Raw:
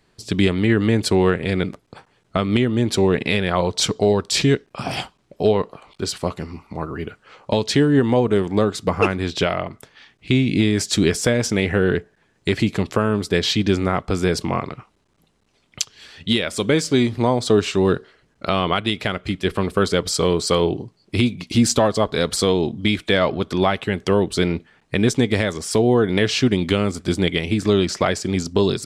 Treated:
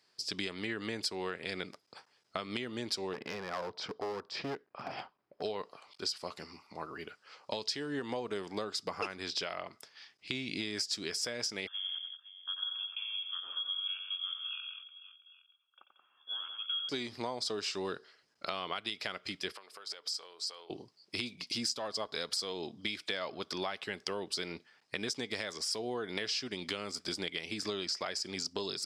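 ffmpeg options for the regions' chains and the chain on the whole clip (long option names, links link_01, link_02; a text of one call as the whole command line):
ffmpeg -i in.wav -filter_complex "[0:a]asettb=1/sr,asplit=3[link_01][link_02][link_03];[link_01]atrim=end=3.134[link_04];[link_02]atrim=start=3.13:end=5.42,asetpts=PTS-STARTPTS,afade=type=in:duration=0.004:curve=qsin,afade=type=out:start_time=2.286:duration=0.004:curve=qsin,lowpass=1500,aeval=exprs='clip(val(0),-1,0.106)':channel_layout=same[link_05];[link_03]atrim=start=5.416[link_06];[link_04][link_05]acrossfade=duration=0.004:curve1=hsin:curve2=qsin[link_07];[link_07][link_06]acrossfade=duration=0.004:curve1=qsin:curve2=hsin,asettb=1/sr,asplit=3[link_08][link_09][link_10];[link_08]atrim=end=11.674[link_11];[link_09]atrim=start=11.67:end=16.89,asetpts=PTS-STARTPTS,afade=type=in:duration=0.004:curve=qsin,afade=type=out:start_time=5.216:duration=0.004:curve=qsin,asplit=3[link_12][link_13][link_14];[link_12]bandpass=frequency=300:width_type=q:width=8,volume=0dB[link_15];[link_13]bandpass=frequency=870:width_type=q:width=8,volume=-6dB[link_16];[link_14]bandpass=frequency=2240:width_type=q:width=8,volume=-9dB[link_17];[link_15][link_16][link_17]amix=inputs=3:normalize=0,aecho=1:1:90|181|512|814:0.447|0.422|0.168|0.112,atrim=end_sample=230202,lowpass=frequency=3100:width_type=q:width=0.5098,lowpass=frequency=3100:width_type=q:width=0.6013,lowpass=frequency=3100:width_type=q:width=0.9,lowpass=frequency=3100:width_type=q:width=2.563,afreqshift=-3600[link_18];[link_10]atrim=start=16.886[link_19];[link_11][link_18]acrossfade=duration=0.004:curve1=hsin:curve2=qsin[link_20];[link_20][link_19]acrossfade=duration=0.004:curve1=qsin:curve2=hsin,asettb=1/sr,asplit=3[link_21][link_22][link_23];[link_21]atrim=end=19.524[link_24];[link_22]atrim=start=19.52:end=20.7,asetpts=PTS-STARTPTS,afade=type=in:duration=0.004:curve=qsin,afade=type=out:start_time=1.176:duration=0.004:curve=qsin,acompressor=threshold=-30dB:ratio=16:attack=3.2:release=140:knee=1:detection=peak,highpass=530[link_25];[link_23]atrim=start=20.696[link_26];[link_24][link_25]acrossfade=duration=0.004:curve1=hsin:curve2=qsin[link_27];[link_27][link_26]acrossfade=duration=0.004:curve1=qsin:curve2=hsin,highpass=frequency=830:poles=1,equalizer=frequency=5000:width=3.7:gain=14,acompressor=threshold=-24dB:ratio=6,volume=-8.5dB" out.wav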